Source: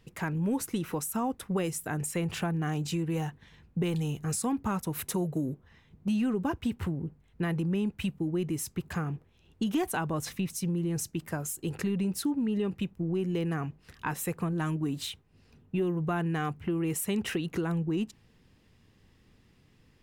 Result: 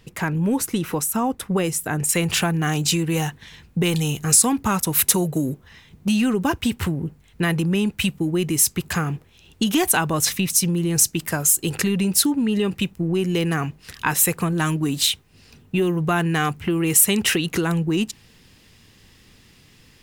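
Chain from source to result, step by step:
high-shelf EQ 2,000 Hz +3.5 dB, from 0:02.09 +12 dB
level +8 dB

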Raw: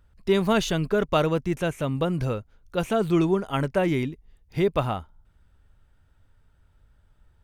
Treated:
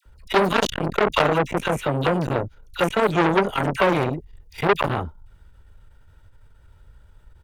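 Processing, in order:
comb filter 2.1 ms, depth 32%
all-pass dispersion lows, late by 57 ms, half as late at 1,200 Hz
saturating transformer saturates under 1,900 Hz
level +8.5 dB

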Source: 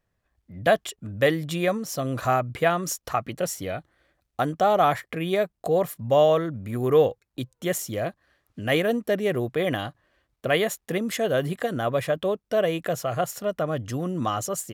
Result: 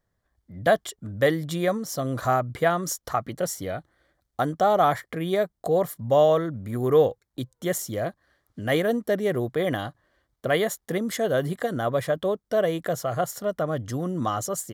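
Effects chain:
parametric band 2,600 Hz −14 dB 0.24 octaves

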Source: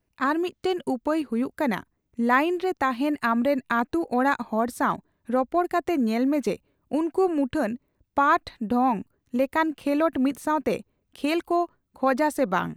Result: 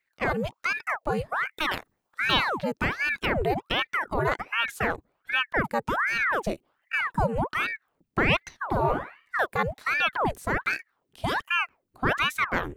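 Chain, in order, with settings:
0:01.59–0:02.32: ceiling on every frequency bin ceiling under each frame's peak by 13 dB
0:08.63–0:09.35: flutter between parallel walls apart 9.4 metres, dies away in 0.44 s
ring modulator whose carrier an LFO sweeps 1,100 Hz, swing 90%, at 1.3 Hz

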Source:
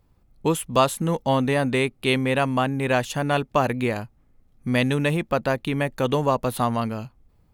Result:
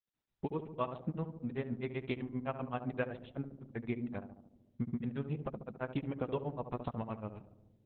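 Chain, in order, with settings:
noise gate −50 dBFS, range −20 dB
high-pass filter 56 Hz 6 dB per octave
high-shelf EQ 9,100 Hz −11.5 dB
downward compressor 5 to 1, threshold −23 dBFS, peak gain reduction 9.5 dB
granular cloud, grains 8.1 per second
high-frequency loss of the air 220 metres
feedback echo with a low-pass in the loop 69 ms, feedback 70%, low-pass 1,000 Hz, level −8.5 dB
wrong playback speed 25 fps video run at 24 fps
level −5.5 dB
Opus 8 kbit/s 48,000 Hz

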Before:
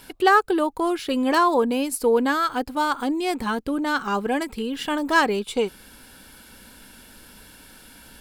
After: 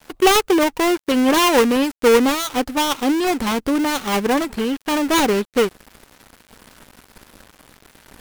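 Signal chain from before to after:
gap after every zero crossing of 0.29 ms
level +6.5 dB

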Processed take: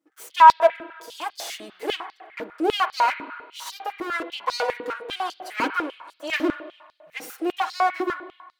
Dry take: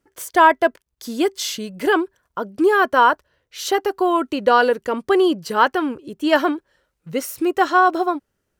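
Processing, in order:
lower of the sound and its delayed copy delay 6.3 ms
spring reverb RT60 1.5 s, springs 32/54 ms, chirp 30 ms, DRR 10.5 dB
high-pass on a step sequencer 10 Hz 290–4,600 Hz
level −8.5 dB

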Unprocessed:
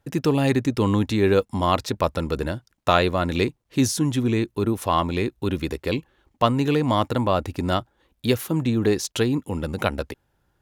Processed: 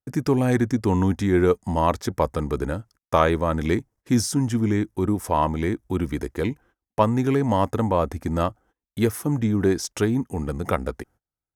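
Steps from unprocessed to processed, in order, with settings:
wrong playback speed 48 kHz file played as 44.1 kHz
noise gate −50 dBFS, range −27 dB
flat-topped bell 3,300 Hz −9 dB 1.1 octaves

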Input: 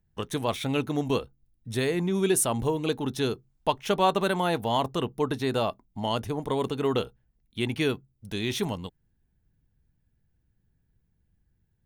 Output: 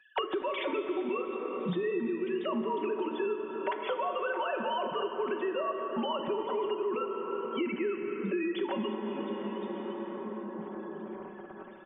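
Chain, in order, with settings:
three sine waves on the formant tracks
comb filter 5.3 ms, depth 78%
reversed playback
downward compressor, threshold −30 dBFS, peak gain reduction 19.5 dB
reversed playback
brickwall limiter −30.5 dBFS, peak gain reduction 10 dB
on a send: echo with shifted repeats 354 ms, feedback 42%, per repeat +53 Hz, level −21.5 dB
on the sum: dense smooth reverb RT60 3.7 s, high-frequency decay 0.45×, DRR 4 dB
multiband upward and downward compressor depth 100%
level +4 dB

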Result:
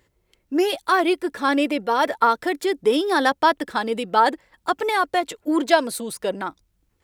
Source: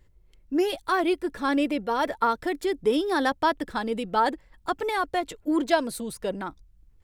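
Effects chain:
high-pass filter 340 Hz 6 dB per octave
level +6.5 dB

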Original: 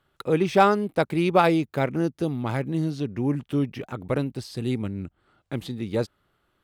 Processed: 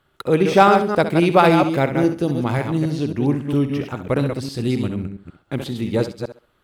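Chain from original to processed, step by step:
delay that plays each chunk backwards 136 ms, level −6 dB
on a send: feedback echo with a high-pass in the loop 66 ms, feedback 25%, high-pass 160 Hz, level −11 dB
on the sum: level +5 dB

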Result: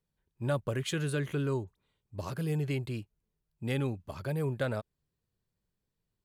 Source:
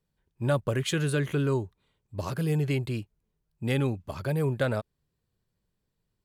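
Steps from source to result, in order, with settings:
0:01.64–0:02.16: all-pass dispersion highs, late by 40 ms, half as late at 2,500 Hz
level −5 dB

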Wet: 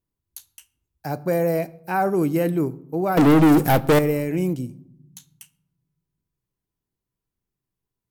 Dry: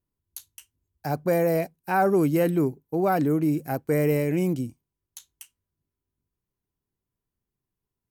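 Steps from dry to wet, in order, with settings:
0:03.17–0:03.99: leveller curve on the samples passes 5
convolution reverb RT60 0.80 s, pre-delay 6 ms, DRR 13.5 dB

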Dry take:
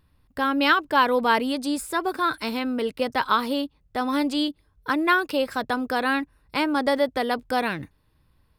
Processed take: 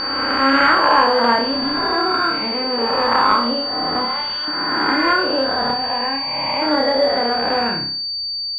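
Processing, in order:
peak hold with a rise ahead of every peak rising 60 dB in 2.09 s
0:04.05–0:04.48: high-pass filter 670 Hz 24 dB per octave
0:05.71–0:06.62: phaser with its sweep stopped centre 1,400 Hz, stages 6
flutter between parallel walls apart 5.1 metres, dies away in 0.47 s
switching amplifier with a slow clock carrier 4,600 Hz

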